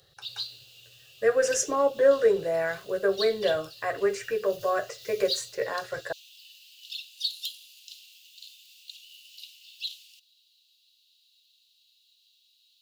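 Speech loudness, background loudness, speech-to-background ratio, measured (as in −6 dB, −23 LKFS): −26.5 LKFS, −39.0 LKFS, 12.5 dB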